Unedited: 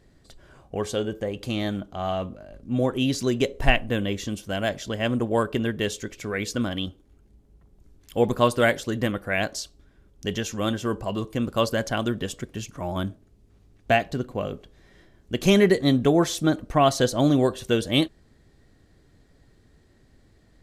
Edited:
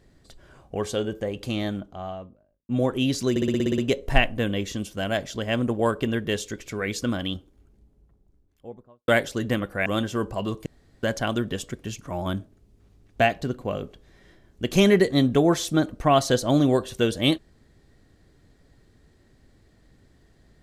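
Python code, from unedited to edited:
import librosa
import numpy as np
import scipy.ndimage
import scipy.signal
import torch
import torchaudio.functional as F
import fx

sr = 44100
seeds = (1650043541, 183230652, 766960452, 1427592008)

y = fx.studio_fade_out(x, sr, start_s=1.46, length_s=1.23)
y = fx.studio_fade_out(y, sr, start_s=6.86, length_s=1.74)
y = fx.edit(y, sr, fx.stutter(start_s=3.3, slice_s=0.06, count=9),
    fx.cut(start_s=9.38, length_s=1.18),
    fx.room_tone_fill(start_s=11.36, length_s=0.37), tone=tone)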